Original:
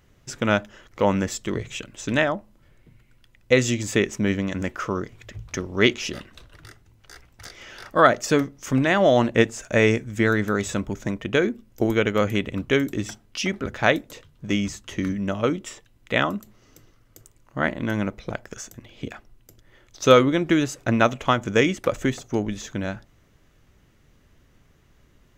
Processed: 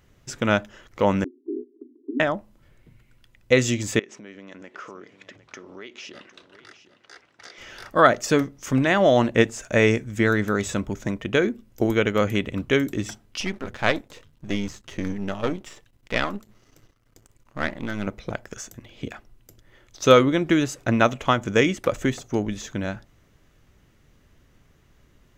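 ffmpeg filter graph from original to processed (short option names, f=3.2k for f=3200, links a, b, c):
-filter_complex "[0:a]asettb=1/sr,asplit=3[a][b][c];[a]atrim=end=1.244[d];[b]atrim=start=1.24:end=2.2,asetpts=PTS-STARTPTS,afade=t=in:d=0.004:c=qsin,afade=t=out:st=0.956:d=0.004:c=qsin,asuperpass=centerf=320:order=20:qfactor=1.8,acompressor=mode=upward:threshold=-47dB:ratio=2.5:attack=3.2:release=140:knee=2.83:detection=peak[e];[c]atrim=start=2.196[f];[d][e]acrossfade=d=0.004:c1=hsin:c2=qsin[g];[g][f]acrossfade=d=0.004:c1=qsin:c2=hsin,asettb=1/sr,asplit=3[h][i][j];[h]atrim=end=3.994[k];[i]atrim=start=3.99:end=7.58,asetpts=PTS-STARTPTS,afade=t=in:d=0.004:c=qsin,afade=t=out:st=3.586:d=0.004:c=qsin,acompressor=threshold=-34dB:ratio=10:attack=3.2:release=140:knee=1:detection=peak,highpass=290,lowpass=5.3k,aecho=1:1:756:0.188,atrim=end_sample=158319[l];[j]atrim=start=7.576[m];[k][l]acrossfade=d=0.004:c1=hsin:c2=qsin[n];[n][m]acrossfade=d=0.004:c1=qsin:c2=hsin,asettb=1/sr,asplit=3[o][p][q];[o]atrim=end=13.404[r];[p]atrim=start=13.4:end=18.07,asetpts=PTS-STARTPTS,afade=t=in:d=0.004:c=qsin,afade=t=out:st=4.666:d=0.004:c=qsin,aeval=exprs='if(lt(val(0),0),0.251*val(0),val(0))':c=same,acrossover=split=7100[s][t];[t]acompressor=threshold=-56dB:ratio=4:attack=1:release=60[u];[s][u]amix=inputs=2:normalize=0[v];[q]atrim=start=18.066[w];[r][v]acrossfade=d=0.004:c1=hsin:c2=qsin[x];[x][w]acrossfade=d=0.004:c1=qsin:c2=hsin"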